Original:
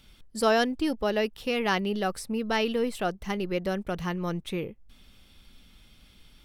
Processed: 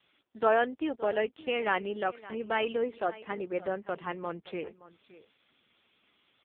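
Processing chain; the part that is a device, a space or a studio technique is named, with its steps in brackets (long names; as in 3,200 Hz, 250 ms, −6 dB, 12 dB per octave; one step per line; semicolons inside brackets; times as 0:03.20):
0:02.80–0:03.84: dynamic equaliser 2,900 Hz, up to −6 dB, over −55 dBFS, Q 2.6
satellite phone (band-pass filter 380–3,300 Hz; single-tap delay 570 ms −18 dB; AMR narrowband 5.15 kbit/s 8,000 Hz)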